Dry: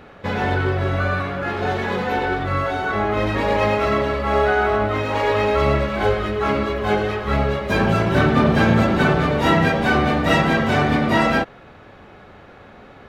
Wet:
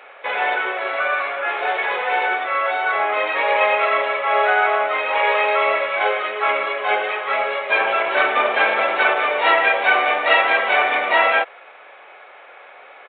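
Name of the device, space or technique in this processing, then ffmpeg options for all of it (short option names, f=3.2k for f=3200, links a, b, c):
musical greeting card: -af "aresample=8000,aresample=44100,highpass=f=540:w=0.5412,highpass=f=540:w=1.3066,equalizer=f=2.3k:t=o:w=0.31:g=8,volume=3dB"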